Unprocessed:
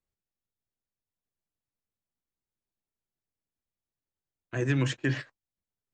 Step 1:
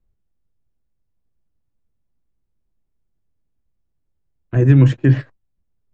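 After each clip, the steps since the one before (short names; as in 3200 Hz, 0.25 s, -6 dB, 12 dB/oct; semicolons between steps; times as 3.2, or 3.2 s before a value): tilt -4 dB/oct; gain +6 dB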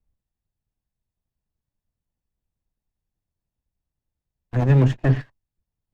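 minimum comb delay 1.1 ms; gain -4 dB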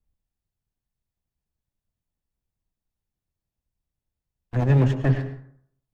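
plate-style reverb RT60 0.63 s, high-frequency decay 0.45×, pre-delay 90 ms, DRR 10.5 dB; gain -2 dB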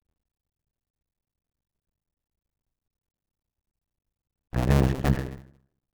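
cycle switcher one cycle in 2, muted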